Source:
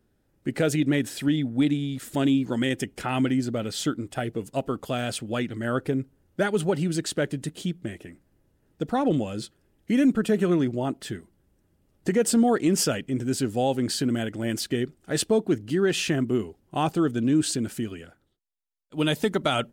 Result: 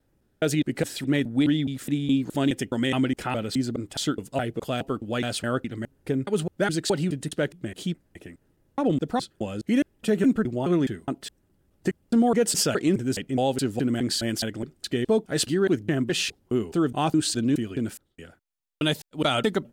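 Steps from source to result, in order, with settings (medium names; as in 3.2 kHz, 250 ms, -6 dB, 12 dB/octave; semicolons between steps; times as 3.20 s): slices played last to first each 209 ms, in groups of 2; dynamic bell 4.1 kHz, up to +4 dB, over -43 dBFS, Q 2.2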